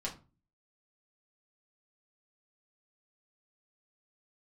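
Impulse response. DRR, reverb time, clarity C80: -4.0 dB, 0.35 s, 18.0 dB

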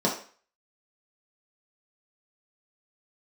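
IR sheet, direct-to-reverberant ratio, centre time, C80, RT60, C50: -4.0 dB, 25 ms, 12.0 dB, 0.45 s, 7.5 dB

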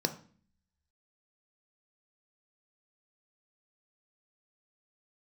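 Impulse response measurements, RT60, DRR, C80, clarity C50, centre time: 0.45 s, 7.0 dB, 17.5 dB, 13.5 dB, 9 ms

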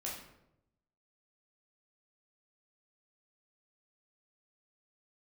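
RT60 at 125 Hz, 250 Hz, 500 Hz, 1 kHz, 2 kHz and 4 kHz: 1.2, 1.0, 0.95, 0.75, 0.65, 0.50 s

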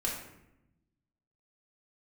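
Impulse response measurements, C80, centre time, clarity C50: 7.0 dB, 42 ms, 4.0 dB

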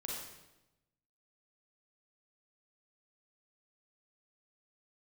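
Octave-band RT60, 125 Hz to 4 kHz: 1.3, 1.1, 1.0, 0.90, 0.85, 0.85 s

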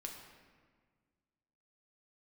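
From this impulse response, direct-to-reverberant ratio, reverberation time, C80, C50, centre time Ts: 0.5 dB, 1.6 s, 6.0 dB, 4.0 dB, 49 ms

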